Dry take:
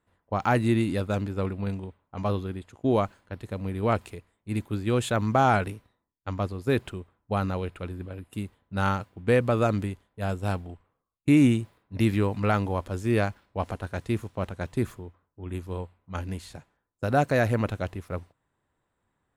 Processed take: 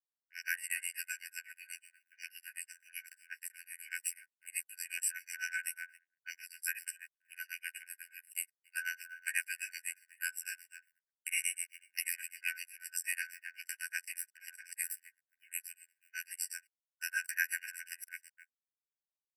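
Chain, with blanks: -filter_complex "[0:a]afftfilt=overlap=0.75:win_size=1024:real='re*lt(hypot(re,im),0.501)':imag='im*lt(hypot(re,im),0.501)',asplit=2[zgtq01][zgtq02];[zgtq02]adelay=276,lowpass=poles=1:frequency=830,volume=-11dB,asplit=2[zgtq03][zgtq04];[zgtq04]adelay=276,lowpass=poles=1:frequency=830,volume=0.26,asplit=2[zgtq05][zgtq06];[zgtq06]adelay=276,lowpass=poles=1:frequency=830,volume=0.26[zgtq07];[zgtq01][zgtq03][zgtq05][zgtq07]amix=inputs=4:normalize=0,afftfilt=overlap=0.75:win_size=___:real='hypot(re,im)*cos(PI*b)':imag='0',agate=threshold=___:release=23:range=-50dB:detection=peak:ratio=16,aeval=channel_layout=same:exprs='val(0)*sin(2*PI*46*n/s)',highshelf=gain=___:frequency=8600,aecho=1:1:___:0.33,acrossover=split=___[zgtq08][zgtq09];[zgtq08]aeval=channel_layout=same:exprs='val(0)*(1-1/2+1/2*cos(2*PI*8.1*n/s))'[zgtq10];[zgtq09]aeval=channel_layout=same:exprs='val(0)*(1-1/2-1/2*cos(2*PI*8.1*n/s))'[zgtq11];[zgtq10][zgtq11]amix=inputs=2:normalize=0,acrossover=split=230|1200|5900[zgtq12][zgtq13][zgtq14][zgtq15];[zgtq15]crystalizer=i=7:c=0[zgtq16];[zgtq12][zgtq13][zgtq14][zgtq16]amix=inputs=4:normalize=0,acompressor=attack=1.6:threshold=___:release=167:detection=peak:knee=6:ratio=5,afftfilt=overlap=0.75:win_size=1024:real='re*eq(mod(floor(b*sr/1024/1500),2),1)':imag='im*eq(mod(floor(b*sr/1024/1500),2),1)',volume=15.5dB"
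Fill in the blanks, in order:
2048, -53dB, -3.5, 3.2, 970, -38dB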